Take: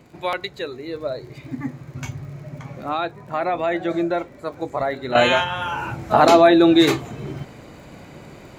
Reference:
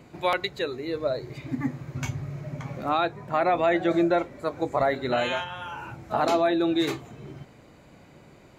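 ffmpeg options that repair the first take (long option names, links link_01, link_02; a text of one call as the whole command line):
ffmpeg -i in.wav -af "adeclick=threshold=4,asetnsamples=nb_out_samples=441:pad=0,asendcmd='5.15 volume volume -10.5dB',volume=0dB" out.wav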